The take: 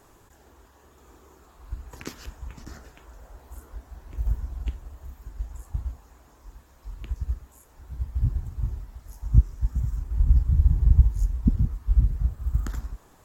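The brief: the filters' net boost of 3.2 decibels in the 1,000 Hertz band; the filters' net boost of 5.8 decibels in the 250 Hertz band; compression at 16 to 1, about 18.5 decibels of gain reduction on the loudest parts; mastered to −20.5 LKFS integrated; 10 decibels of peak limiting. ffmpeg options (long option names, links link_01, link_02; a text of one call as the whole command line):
ffmpeg -i in.wav -af "equalizer=frequency=250:width_type=o:gain=7.5,equalizer=frequency=1000:width_type=o:gain=3.5,acompressor=threshold=-28dB:ratio=16,volume=20.5dB,alimiter=limit=-7dB:level=0:latency=1" out.wav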